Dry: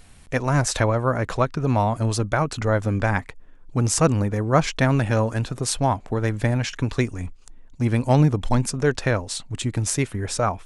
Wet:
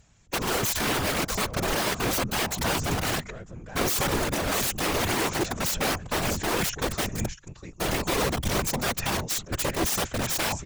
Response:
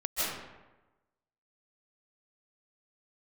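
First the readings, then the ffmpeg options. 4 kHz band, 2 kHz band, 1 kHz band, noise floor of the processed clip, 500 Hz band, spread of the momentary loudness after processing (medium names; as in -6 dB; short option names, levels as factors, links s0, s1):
+4.5 dB, 0.0 dB, -3.5 dB, -49 dBFS, -5.5 dB, 5 LU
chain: -filter_complex "[0:a]agate=range=0.282:threshold=0.0224:ratio=16:detection=peak,equalizer=f=240:w=3.3:g=-6.5,alimiter=limit=0.2:level=0:latency=1:release=32,aresample=16000,asoftclip=type=hard:threshold=0.112,aresample=44100,aexciter=amount=3.4:drive=5.4:freq=6200,asplit=2[s0][s1];[s1]aecho=0:1:646:0.158[s2];[s0][s2]amix=inputs=2:normalize=0,aeval=exprs='(mod(11.9*val(0)+1,2)-1)/11.9':c=same,afftfilt=real='hypot(re,im)*cos(2*PI*random(0))':imag='hypot(re,im)*sin(2*PI*random(1))':win_size=512:overlap=0.75,volume=2.11"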